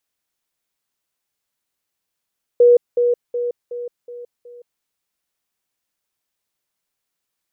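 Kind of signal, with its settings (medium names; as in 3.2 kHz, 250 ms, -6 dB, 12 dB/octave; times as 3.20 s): level ladder 483 Hz -7 dBFS, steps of -6 dB, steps 6, 0.17 s 0.20 s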